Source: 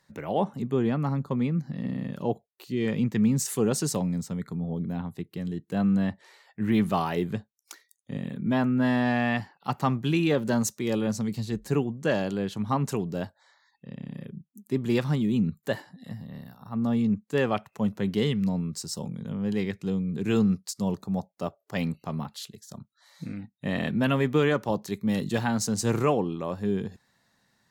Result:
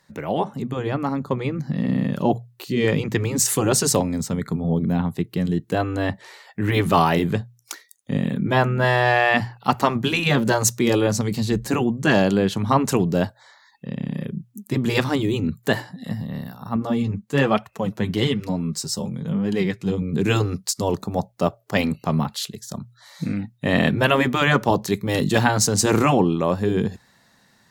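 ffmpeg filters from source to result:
-filter_complex "[0:a]asettb=1/sr,asplit=3[a][b][c];[a]atrim=end=16.764[d];[b]atrim=start=16.76:end=20.02,asetpts=PTS-STARTPTS,afade=t=in:d=0.004:c=qsin,afade=t=out:st=3.256:d=0.004:c=qsin,flanger=delay=2.7:depth=7.7:regen=23:speed=1.1:shape=triangular[e];[c]atrim=start=20.016[f];[d][e]acrossfade=d=0.004:c1=hsin:c2=qsin[g];[g][f]acrossfade=d=0.004:c1=qsin:c2=hsin,afftfilt=real='re*lt(hypot(re,im),0.398)':imag='im*lt(hypot(re,im),0.398)':win_size=1024:overlap=0.75,bandreject=f=60:t=h:w=6,bandreject=f=120:t=h:w=6,dynaudnorm=f=990:g=3:m=5dB,volume=6dB"

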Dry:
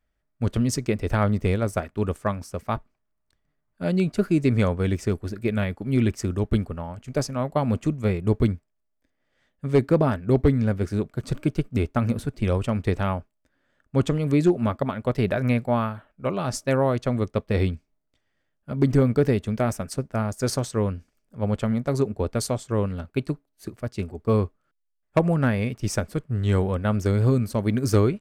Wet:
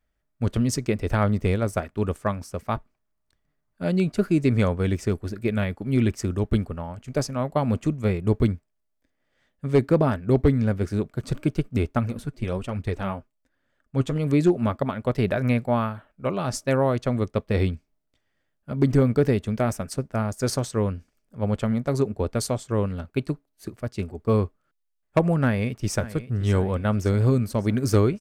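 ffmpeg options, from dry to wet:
-filter_complex "[0:a]asettb=1/sr,asplit=3[a][b][c];[a]atrim=end=11.994[d];[b]atrim=start=11.99:end=14.16,asetpts=PTS-STARTPTS,afade=t=in:d=0.004:c=qsin,afade=t=out:st=2.166:d=0.004:c=qsin,flanger=delay=0.1:depth=8.5:regen=33:speed=1.2:shape=triangular[e];[c]atrim=start=14.156[f];[d][e]acrossfade=d=0.004:c1=hsin:c2=qsin[g];[g][f]acrossfade=d=0.004:c1=qsin:c2=hsin,asplit=2[h][i];[i]afade=t=in:st=25.42:d=0.01,afade=t=out:st=26.07:d=0.01,aecho=0:1:570|1140|1710|2280|2850|3420:0.177828|0.106697|0.0640181|0.0384108|0.0230465|0.0138279[j];[h][j]amix=inputs=2:normalize=0"

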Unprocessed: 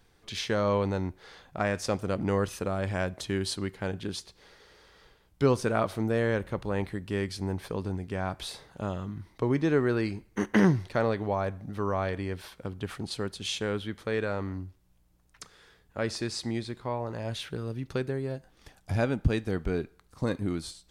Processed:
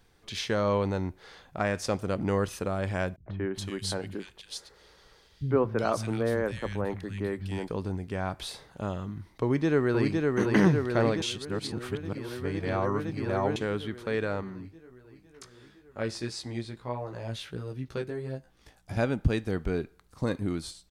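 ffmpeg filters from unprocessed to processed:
-filter_complex "[0:a]asettb=1/sr,asplit=3[a][b][c];[a]atrim=end=3.164[d];[b]atrim=start=3.16:end=7.68,asetpts=PTS-STARTPTS,afade=t=in:d=0.004:c=qsin,afade=t=out:st=4.516:d=0.004:c=qsin,acrossover=split=180|2100[e][f][g];[f]adelay=100[h];[g]adelay=380[i];[e][h][i]amix=inputs=3:normalize=0,atrim=end_sample=199332[j];[c]atrim=start=7.676[k];[d][j]acrossfade=d=0.004:c1=hsin:c2=qsin[l];[l][k]acrossfade=d=0.004:c1=qsin:c2=hsin,asplit=2[m][n];[n]afade=t=in:st=9.43:d=0.01,afade=t=out:st=10.16:d=0.01,aecho=0:1:510|1020|1530|2040|2550|3060|3570|4080|4590|5100|5610|6120:0.749894|0.562421|0.421815|0.316362|0.237271|0.177953|0.133465|0.100099|0.0750741|0.0563056|0.0422292|0.0316719[o];[m][o]amix=inputs=2:normalize=0,asettb=1/sr,asplit=3[p][q][r];[p]atrim=end=14.414[s];[q]atrim=start=14.41:end=18.97,asetpts=PTS-STARTPTS,afade=t=in:d=0.004:c=qsin,afade=t=out:st=4.556:d=0.004:c=qsin,flanger=delay=15:depth=3.1:speed=1.5[t];[r]atrim=start=18.966[u];[s][t]acrossfade=d=0.004:c1=hsin:c2=qsin[v];[v][u]acrossfade=d=0.004:c1=qsin:c2=hsin,asplit=3[w][x][y];[w]atrim=end=11.222[z];[x]atrim=start=11.218:end=13.562,asetpts=PTS-STARTPTS,areverse[aa];[y]atrim=start=13.558[ab];[z][aa]acrossfade=d=0.004:c1=hsin:c2=hsin[ac];[ac][ab]acrossfade=d=0.004:c1=hsin:c2=hsin"

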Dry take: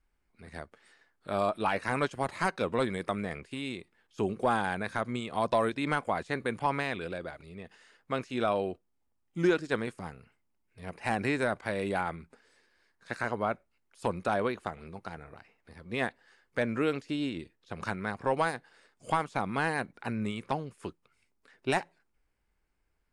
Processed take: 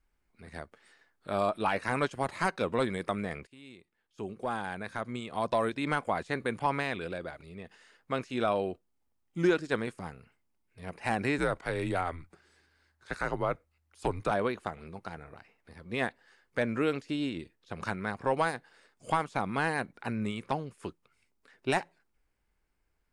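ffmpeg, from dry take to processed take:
-filter_complex "[0:a]asettb=1/sr,asplit=3[a][b][c];[a]atrim=end=11.384[d];[b]atrim=start=11.38:end=14.31,asetpts=PTS-STARTPTS,afade=t=in:d=0.004:c=qsin,afade=t=out:st=2.926:d=0.004:c=qsin,afreqshift=-79[e];[c]atrim=start=14.306[f];[d][e]acrossfade=d=0.004:c1=hsin:c2=qsin[g];[g][f]acrossfade=d=0.004:c1=qsin:c2=hsin,asplit=2[h][i];[h]atrim=end=3.47,asetpts=PTS-STARTPTS,afade=t=out:st=3.466:d=0.004:c=hsin:silence=0.133352[j];[i]atrim=start=3.47,asetpts=PTS-STARTPTS,afade=t=in:d=2.61:silence=0.133352[k];[j][k]concat=n=2:v=0:a=1"

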